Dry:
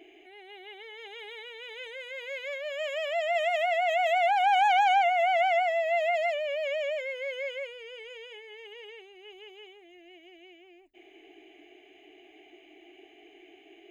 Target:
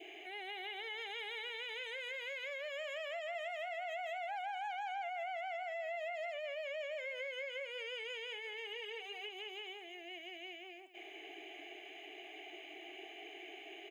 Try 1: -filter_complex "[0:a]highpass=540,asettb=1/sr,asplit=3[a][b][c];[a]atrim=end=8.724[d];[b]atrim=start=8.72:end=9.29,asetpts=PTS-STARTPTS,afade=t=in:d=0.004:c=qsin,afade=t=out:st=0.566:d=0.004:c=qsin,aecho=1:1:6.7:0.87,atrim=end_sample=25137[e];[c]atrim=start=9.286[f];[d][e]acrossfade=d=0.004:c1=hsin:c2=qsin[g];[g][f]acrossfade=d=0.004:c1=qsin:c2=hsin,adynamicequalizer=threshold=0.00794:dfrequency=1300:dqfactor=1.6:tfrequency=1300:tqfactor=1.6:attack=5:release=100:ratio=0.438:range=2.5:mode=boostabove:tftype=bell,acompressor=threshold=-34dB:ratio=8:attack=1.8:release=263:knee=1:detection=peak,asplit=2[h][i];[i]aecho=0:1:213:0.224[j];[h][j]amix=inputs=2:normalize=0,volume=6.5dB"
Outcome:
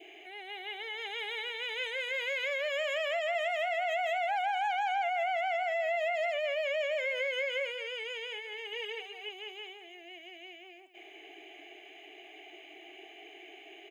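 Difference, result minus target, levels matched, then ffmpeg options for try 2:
compressor: peak gain reduction -10 dB
-filter_complex "[0:a]highpass=540,asettb=1/sr,asplit=3[a][b][c];[a]atrim=end=8.724[d];[b]atrim=start=8.72:end=9.29,asetpts=PTS-STARTPTS,afade=t=in:d=0.004:c=qsin,afade=t=out:st=0.566:d=0.004:c=qsin,aecho=1:1:6.7:0.87,atrim=end_sample=25137[e];[c]atrim=start=9.286[f];[d][e]acrossfade=d=0.004:c1=hsin:c2=qsin[g];[g][f]acrossfade=d=0.004:c1=qsin:c2=hsin,adynamicequalizer=threshold=0.00794:dfrequency=1300:dqfactor=1.6:tfrequency=1300:tqfactor=1.6:attack=5:release=100:ratio=0.438:range=2.5:mode=boostabove:tftype=bell,acompressor=threshold=-45.5dB:ratio=8:attack=1.8:release=263:knee=1:detection=peak,asplit=2[h][i];[i]aecho=0:1:213:0.224[j];[h][j]amix=inputs=2:normalize=0,volume=6.5dB"

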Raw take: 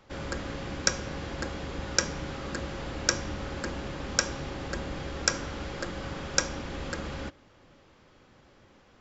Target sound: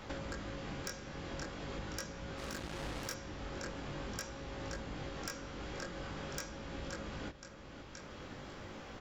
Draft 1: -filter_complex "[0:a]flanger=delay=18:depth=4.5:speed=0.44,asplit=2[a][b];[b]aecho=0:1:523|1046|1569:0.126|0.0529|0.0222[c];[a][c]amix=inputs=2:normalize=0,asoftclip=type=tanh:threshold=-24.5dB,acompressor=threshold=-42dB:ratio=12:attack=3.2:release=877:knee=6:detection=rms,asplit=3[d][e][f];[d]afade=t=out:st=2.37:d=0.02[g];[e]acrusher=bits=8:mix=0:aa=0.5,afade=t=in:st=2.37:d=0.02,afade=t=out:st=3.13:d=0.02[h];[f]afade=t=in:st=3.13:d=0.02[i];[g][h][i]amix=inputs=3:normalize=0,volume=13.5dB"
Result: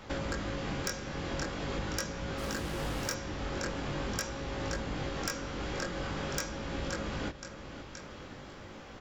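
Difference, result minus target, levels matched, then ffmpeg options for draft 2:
compressor: peak gain reduction -7.5 dB
-filter_complex "[0:a]flanger=delay=18:depth=4.5:speed=0.44,asplit=2[a][b];[b]aecho=0:1:523|1046|1569:0.126|0.0529|0.0222[c];[a][c]amix=inputs=2:normalize=0,asoftclip=type=tanh:threshold=-24.5dB,acompressor=threshold=-50dB:ratio=12:attack=3.2:release=877:knee=6:detection=rms,asplit=3[d][e][f];[d]afade=t=out:st=2.37:d=0.02[g];[e]acrusher=bits=8:mix=0:aa=0.5,afade=t=in:st=2.37:d=0.02,afade=t=out:st=3.13:d=0.02[h];[f]afade=t=in:st=3.13:d=0.02[i];[g][h][i]amix=inputs=3:normalize=0,volume=13.5dB"

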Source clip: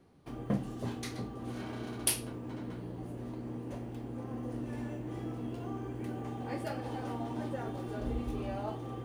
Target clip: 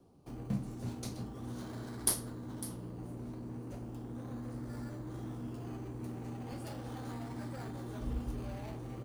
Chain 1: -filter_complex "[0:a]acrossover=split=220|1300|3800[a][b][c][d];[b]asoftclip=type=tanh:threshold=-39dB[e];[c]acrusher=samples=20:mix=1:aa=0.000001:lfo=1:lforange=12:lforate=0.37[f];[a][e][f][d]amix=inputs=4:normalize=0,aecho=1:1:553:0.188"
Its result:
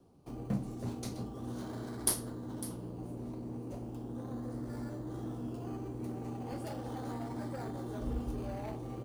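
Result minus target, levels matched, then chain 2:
soft clip: distortion -6 dB
-filter_complex "[0:a]acrossover=split=220|1300|3800[a][b][c][d];[b]asoftclip=type=tanh:threshold=-47.5dB[e];[c]acrusher=samples=20:mix=1:aa=0.000001:lfo=1:lforange=12:lforate=0.37[f];[a][e][f][d]amix=inputs=4:normalize=0,aecho=1:1:553:0.188"

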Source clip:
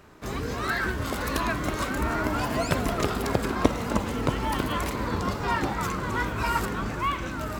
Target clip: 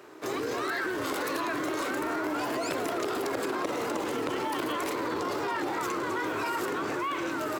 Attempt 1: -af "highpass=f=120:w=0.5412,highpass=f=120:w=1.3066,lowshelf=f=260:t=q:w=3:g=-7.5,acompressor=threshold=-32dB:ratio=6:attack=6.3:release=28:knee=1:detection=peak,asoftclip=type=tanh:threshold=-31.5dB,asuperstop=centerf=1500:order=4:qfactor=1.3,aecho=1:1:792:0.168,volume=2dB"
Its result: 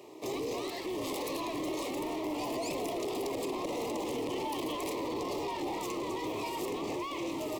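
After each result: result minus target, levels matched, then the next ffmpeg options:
soft clip: distortion +16 dB; 2000 Hz band -7.0 dB
-af "highpass=f=120:w=0.5412,highpass=f=120:w=1.3066,lowshelf=f=260:t=q:w=3:g=-7.5,acompressor=threshold=-32dB:ratio=6:attack=6.3:release=28:knee=1:detection=peak,asoftclip=type=tanh:threshold=-19.5dB,asuperstop=centerf=1500:order=4:qfactor=1.3,aecho=1:1:792:0.168,volume=2dB"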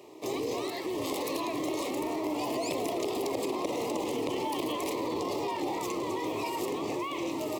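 2000 Hz band -7.5 dB
-af "highpass=f=120:w=0.5412,highpass=f=120:w=1.3066,lowshelf=f=260:t=q:w=3:g=-7.5,acompressor=threshold=-32dB:ratio=6:attack=6.3:release=28:knee=1:detection=peak,asoftclip=type=tanh:threshold=-19.5dB,aecho=1:1:792:0.168,volume=2dB"

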